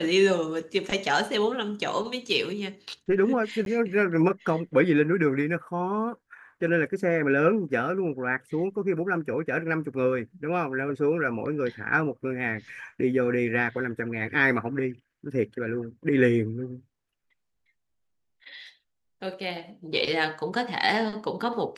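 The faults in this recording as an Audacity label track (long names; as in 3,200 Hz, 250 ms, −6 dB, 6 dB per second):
3.650000	3.660000	drop-out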